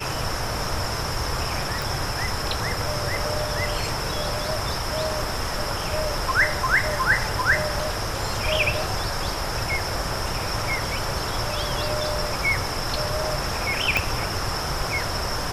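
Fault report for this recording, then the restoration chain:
1.82 pop
13.97 pop -5 dBFS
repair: de-click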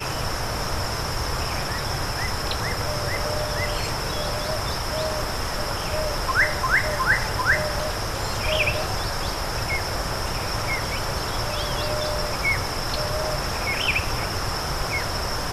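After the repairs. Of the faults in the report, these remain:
13.97 pop

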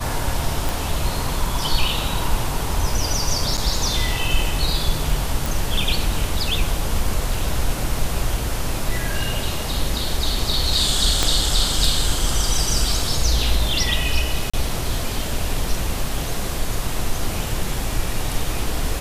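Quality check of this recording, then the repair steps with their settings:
0.69 pop
3.57–3.58 gap 7.4 ms
5.46 pop
11.23 pop -3 dBFS
14.5–14.54 gap 35 ms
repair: de-click; interpolate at 3.57, 7.4 ms; interpolate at 14.5, 35 ms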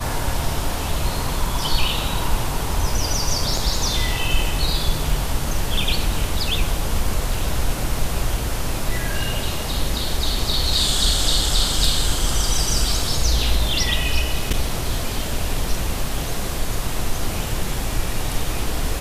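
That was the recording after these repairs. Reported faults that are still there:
11.23 pop

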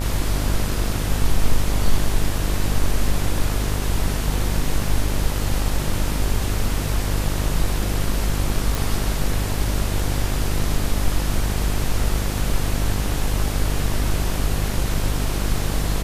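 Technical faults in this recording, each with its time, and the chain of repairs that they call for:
buzz 50 Hz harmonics 37 -24 dBFS
8.75 pop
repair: de-click; de-hum 50 Hz, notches 37

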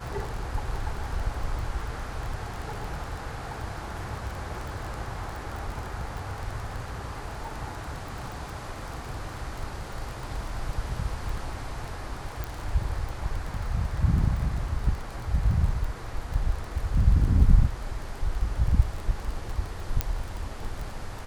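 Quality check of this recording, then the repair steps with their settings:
crackle 21/s -31 dBFS
12.44 pop
20.01 pop -8 dBFS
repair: de-click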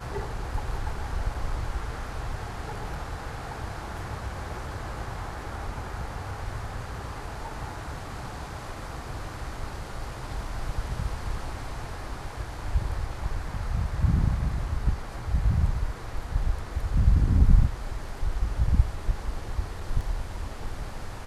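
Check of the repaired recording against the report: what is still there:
20.01 pop

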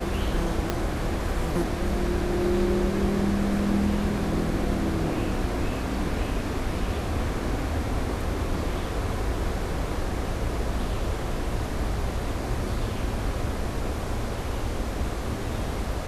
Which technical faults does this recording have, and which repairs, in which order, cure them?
0.7 pop -10 dBFS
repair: de-click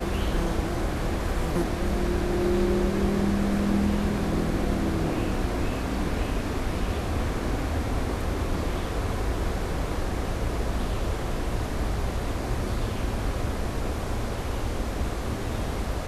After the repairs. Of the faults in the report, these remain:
0.7 pop

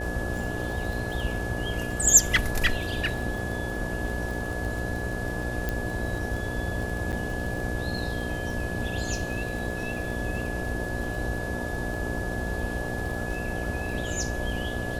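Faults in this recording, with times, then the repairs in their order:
buzz 60 Hz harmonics 12 -34 dBFS
crackle 26/s -32 dBFS
tone 1700 Hz -35 dBFS
5.69 pop -14 dBFS
7.12–7.13 gap 8.1 ms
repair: de-click; notch 1700 Hz, Q 30; de-hum 60 Hz, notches 12; interpolate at 7.12, 8.1 ms

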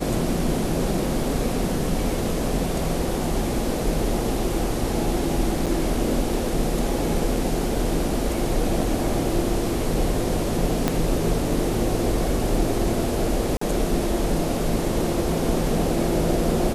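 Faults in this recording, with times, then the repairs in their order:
5.66–5.67 gap 6.7 ms
10.88 pop -6 dBFS
13.57–13.61 gap 44 ms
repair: de-click; interpolate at 5.66, 6.7 ms; interpolate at 13.57, 44 ms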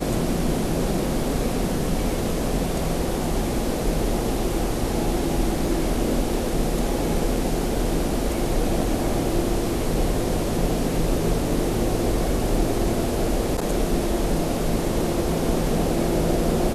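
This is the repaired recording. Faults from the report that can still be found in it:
10.88 pop

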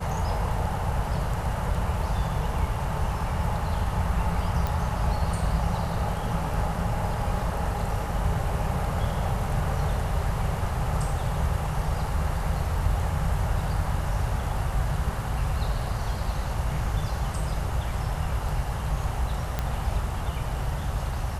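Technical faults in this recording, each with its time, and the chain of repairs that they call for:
4.67 pop
19.59 pop -13 dBFS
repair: de-click

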